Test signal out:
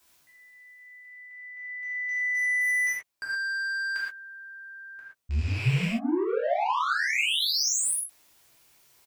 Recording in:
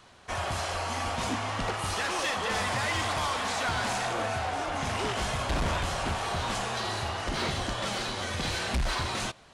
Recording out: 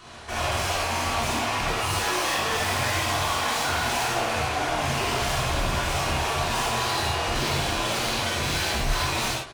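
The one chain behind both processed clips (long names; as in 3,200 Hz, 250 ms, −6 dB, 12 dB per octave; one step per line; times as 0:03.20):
loose part that buzzes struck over −39 dBFS, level −29 dBFS
in parallel at −7.5 dB: hard clipping −31 dBFS
on the sum: double-tracking delay 13 ms −10 dB
soft clipping −33.5 dBFS
reverb whose tail is shaped and stops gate 150 ms flat, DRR −7 dB
reversed playback
upward compression, threshold −44 dBFS
reversed playback
level +2 dB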